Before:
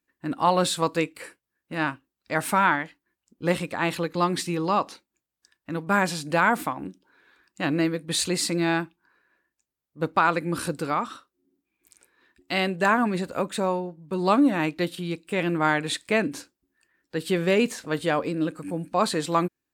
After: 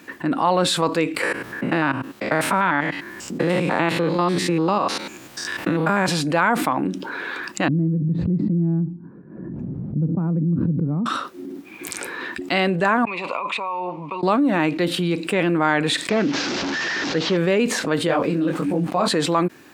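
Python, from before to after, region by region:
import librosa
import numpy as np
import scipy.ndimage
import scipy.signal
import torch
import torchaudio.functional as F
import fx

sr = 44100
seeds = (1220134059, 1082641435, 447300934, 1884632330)

y = fx.chain(x, sr, fx.spec_steps(hold_ms=100),
    fx.band_squash(depth_pct=70), at=(1.23, 6.08))
y = fx.chain(y, sr, fx.lowpass_res(hz=170.0, q=2.1),
    fx.pre_swell(db_per_s=79.0), at=(7.68, 11.06))
y = fx.chain(y, sr, fx.over_compress(threshold_db=-34.0, ratio=-1.0),
    fx.double_bandpass(hz=1600.0, octaves=1.2), at=(13.05, 14.23))
y = fx.chain(y, sr, fx.delta_mod(bps=32000, step_db=-37.5),
    fx.high_shelf(hz=4700.0, db=8.5),
    fx.doppler_dist(depth_ms=0.14), at=(16.09, 17.37))
y = fx.chain(y, sr, fx.low_shelf(hz=250.0, db=5.5),
    fx.sample_gate(floor_db=-44.5),
    fx.detune_double(cents=52), at=(18.07, 19.08))
y = scipy.signal.sosfilt(scipy.signal.butter(2, 150.0, 'highpass', fs=sr, output='sos'), y)
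y = fx.high_shelf(y, sr, hz=5400.0, db=-12.0)
y = fx.env_flatten(y, sr, amount_pct=70)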